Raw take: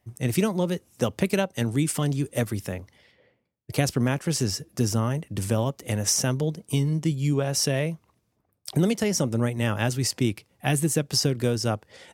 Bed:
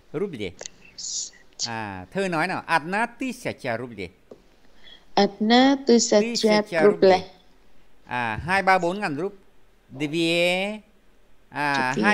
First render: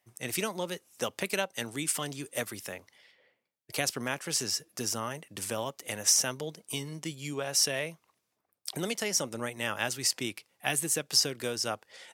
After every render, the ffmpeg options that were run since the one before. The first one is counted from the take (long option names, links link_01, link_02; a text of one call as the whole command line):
ffmpeg -i in.wav -af "highpass=frequency=1100:poles=1" out.wav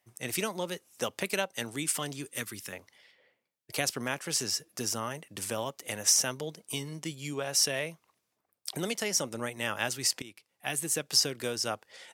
ffmpeg -i in.wav -filter_complex "[0:a]asettb=1/sr,asplit=3[link_01][link_02][link_03];[link_01]atrim=end=2.274[link_04];[link_02]atrim=start=2.27:end=2.73,asetpts=PTS-STARTPTS,afade=type=in:duration=0.004:curve=qsin,afade=type=out:start_time=0.456:duration=0.004:curve=qsin,equalizer=frequency=660:width_type=o:width=0.79:gain=-14.5[link_05];[link_03]atrim=start=2.726[link_06];[link_04][link_05]acrossfade=duration=0.004:curve1=hsin:curve2=qsin[link_07];[link_07][link_06]acrossfade=duration=0.004:curve1=qsin:curve2=hsin,asplit=2[link_08][link_09];[link_08]atrim=end=10.22,asetpts=PTS-STARTPTS,afade=type=out:start_time=10.216:duration=0.004:curve=hsin:silence=0.149624[link_10];[link_09]atrim=start=10.22,asetpts=PTS-STARTPTS,afade=type=in:duration=0.81:silence=0.149624[link_11];[link_10][link_11]concat=n=2:v=0:a=1" out.wav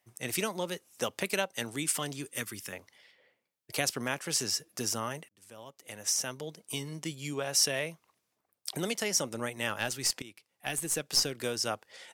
ffmpeg -i in.wav -filter_complex "[0:a]asettb=1/sr,asplit=3[link_01][link_02][link_03];[link_01]atrim=end=2.314[link_04];[link_02]atrim=start=2.31:end=2.76,asetpts=PTS-STARTPTS,afade=type=in:duration=0.004:curve=qsin,afade=type=out:start_time=0.446:duration=0.004:curve=qsin,bandreject=frequency=4000:width=12[link_05];[link_03]atrim=start=2.756[link_06];[link_04][link_05]acrossfade=duration=0.004:curve1=hsin:curve2=qsin[link_07];[link_07][link_06]acrossfade=duration=0.004:curve1=qsin:curve2=hsin,asettb=1/sr,asplit=3[link_08][link_09][link_10];[link_08]atrim=end=9.694[link_11];[link_09]atrim=start=9.69:end=11.41,asetpts=PTS-STARTPTS,afade=type=in:duration=0.004:curve=qsin,afade=type=out:start_time=1.716:duration=0.004:curve=qsin,aeval=exprs='(tanh(5.62*val(0)+0.35)-tanh(0.35))/5.62':channel_layout=same[link_12];[link_10]atrim=start=11.406[link_13];[link_11][link_12]acrossfade=duration=0.004:curve1=hsin:curve2=qsin[link_14];[link_14][link_13]acrossfade=duration=0.004:curve1=qsin:curve2=hsin,asplit=2[link_15][link_16];[link_15]atrim=end=5.29,asetpts=PTS-STARTPTS,afade=type=out:start_time=5.286:duration=0.004:curve=hsin[link_17];[link_16]atrim=start=5.29,asetpts=PTS-STARTPTS,afade=type=in:duration=1.66[link_18];[link_17][link_18]concat=n=2:v=0:a=1" out.wav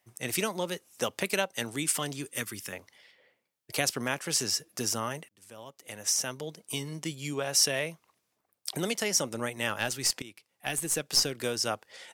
ffmpeg -i in.wav -af "volume=2dB" out.wav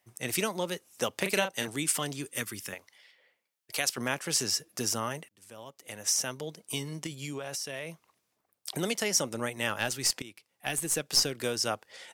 ffmpeg -i in.wav -filter_complex "[0:a]asettb=1/sr,asplit=3[link_01][link_02][link_03];[link_01]atrim=end=1.184[link_04];[link_02]atrim=start=1.18:end=1.68,asetpts=PTS-STARTPTS,afade=type=in:duration=0.004:curve=qsin,afade=type=out:start_time=0.496:duration=0.004:curve=qsin,asplit=2[link_05][link_06];[link_06]adelay=37,volume=-6.5dB[link_07];[link_05][link_07]amix=inputs=2:normalize=0,atrim=end_sample=22050[link_08];[link_03]atrim=start=1.676[link_09];[link_04][link_08]acrossfade=duration=0.004:curve1=hsin:curve2=qsin[link_10];[link_10][link_09]acrossfade=duration=0.004:curve1=qsin:curve2=hsin,asettb=1/sr,asplit=3[link_11][link_12][link_13];[link_11]atrim=end=2.744[link_14];[link_12]atrim=start=2.74:end=3.98,asetpts=PTS-STARTPTS,afade=type=in:duration=0.004:curve=qsin,afade=type=out:start_time=1.236:duration=0.004:curve=qsin,lowshelf=frequency=500:gain=-11.5[link_15];[link_13]atrim=start=3.976[link_16];[link_14][link_15]acrossfade=duration=0.004:curve1=hsin:curve2=qsin[link_17];[link_17][link_16]acrossfade=duration=0.004:curve1=qsin:curve2=hsin,asettb=1/sr,asplit=3[link_18][link_19][link_20];[link_18]atrim=end=7.064[link_21];[link_19]atrim=start=7.06:end=8.69,asetpts=PTS-STARTPTS,afade=type=in:duration=0.004:curve=qsin,afade=type=out:start_time=1.626:duration=0.004:curve=qsin,acompressor=threshold=-32dB:ratio=12:attack=3.2:release=140:knee=1:detection=peak[link_22];[link_20]atrim=start=8.686[link_23];[link_21][link_22]acrossfade=duration=0.004:curve1=hsin:curve2=qsin[link_24];[link_24][link_23]acrossfade=duration=0.004:curve1=qsin:curve2=hsin" out.wav